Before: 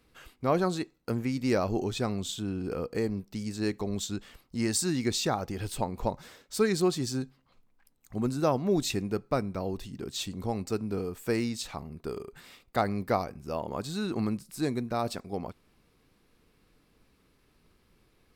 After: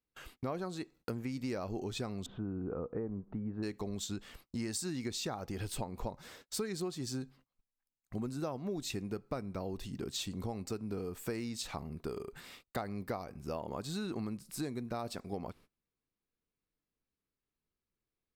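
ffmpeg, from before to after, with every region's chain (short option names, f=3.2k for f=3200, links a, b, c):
-filter_complex "[0:a]asettb=1/sr,asplit=3[a][b][c];[a]atrim=end=2.264[d];[b]atrim=start=2.26:end=3.63,asetpts=PTS-STARTPTS,afade=t=in:d=0.004:c=qsin,afade=t=out:st=1.366:d=0.004:c=qsin,lowpass=f=1.4k:w=0.5412,lowpass=f=1.4k:w=1.3066,acompressor=mode=upward:threshold=-40dB:ratio=2.5:attack=3.2:release=140:knee=2.83:detection=peak[e];[c]atrim=start=3.626[f];[d][e]acrossfade=d=0.004:c1=hsin:c2=qsin[g];[g][f]acrossfade=d=0.004:c1=qsin:c2=hsin,agate=range=-27dB:threshold=-55dB:ratio=16:detection=peak,acompressor=threshold=-35dB:ratio=6"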